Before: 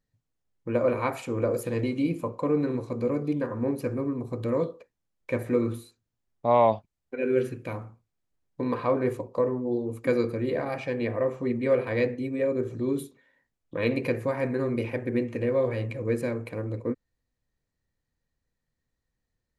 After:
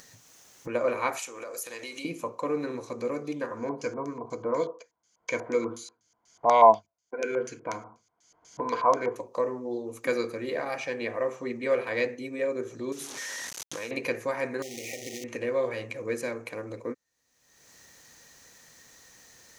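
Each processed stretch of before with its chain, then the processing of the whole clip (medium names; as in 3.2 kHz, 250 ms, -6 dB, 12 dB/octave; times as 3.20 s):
1.19–2.05 s: high-pass 970 Hz 6 dB/octave + treble shelf 6.1 kHz +8.5 dB + compression 3:1, threshold -38 dBFS
3.57–9.16 s: rippled EQ curve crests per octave 1.8, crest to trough 9 dB + LFO low-pass square 4.1 Hz 970–6000 Hz
12.92–13.91 s: one-bit delta coder 64 kbps, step -37.5 dBFS + compression, threshold -31 dBFS
14.62–15.24 s: compression 16:1, threshold -32 dBFS + companded quantiser 4-bit + brick-wall FIR band-stop 830–1800 Hz
whole clip: high-pass 830 Hz 6 dB/octave; upward compressor, threshold -36 dBFS; peaking EQ 6.2 kHz +11 dB 0.38 oct; trim +3 dB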